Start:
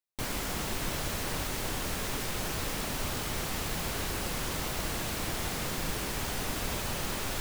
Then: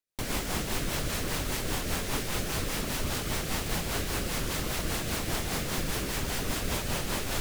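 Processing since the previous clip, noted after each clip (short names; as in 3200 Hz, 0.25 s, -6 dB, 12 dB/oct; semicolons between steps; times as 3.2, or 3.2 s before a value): rotary speaker horn 5 Hz; gain +4.5 dB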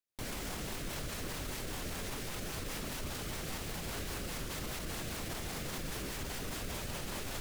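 limiter -26.5 dBFS, peak gain reduction 9.5 dB; gain -4 dB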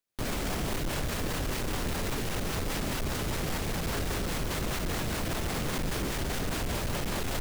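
half-waves squared off; gain +3.5 dB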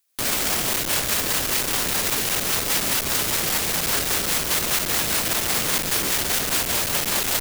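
tilt +3 dB/oct; gain +7.5 dB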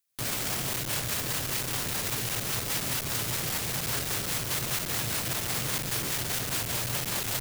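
bell 120 Hz +13.5 dB 0.65 oct; gain -8.5 dB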